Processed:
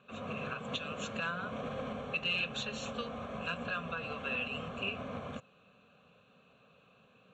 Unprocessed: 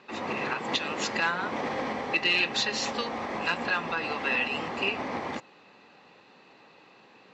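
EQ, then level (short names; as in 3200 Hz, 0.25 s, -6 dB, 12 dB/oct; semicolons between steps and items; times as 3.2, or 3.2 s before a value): high shelf 6100 Hz -10.5 dB; fixed phaser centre 810 Hz, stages 4; fixed phaser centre 2100 Hz, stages 4; +3.0 dB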